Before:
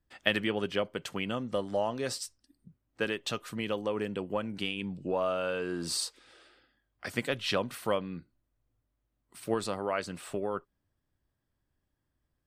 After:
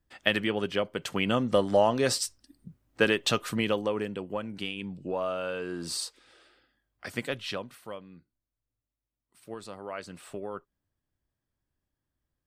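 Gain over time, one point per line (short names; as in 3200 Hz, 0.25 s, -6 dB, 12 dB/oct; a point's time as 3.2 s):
0.9 s +2 dB
1.36 s +8 dB
3.51 s +8 dB
4.19 s -1 dB
7.34 s -1 dB
7.83 s -11 dB
9.47 s -11 dB
10.15 s -4 dB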